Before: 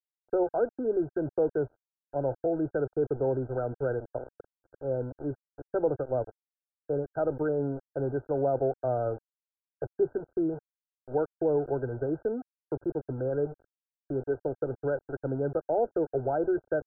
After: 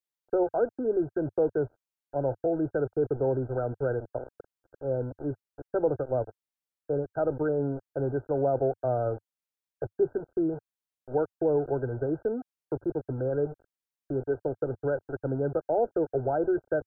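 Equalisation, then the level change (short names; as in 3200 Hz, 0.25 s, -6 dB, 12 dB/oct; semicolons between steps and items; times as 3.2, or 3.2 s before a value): dynamic EQ 100 Hz, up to +3 dB, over -47 dBFS, Q 2.2; +1.0 dB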